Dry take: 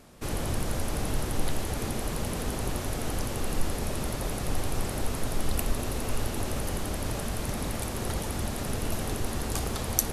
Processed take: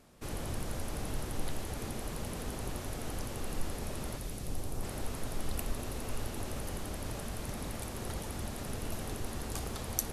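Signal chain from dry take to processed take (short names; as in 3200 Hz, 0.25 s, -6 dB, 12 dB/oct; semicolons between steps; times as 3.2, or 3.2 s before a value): 4.17–4.82 bell 710 Hz -> 2700 Hz -7 dB 2.5 oct; gain -7.5 dB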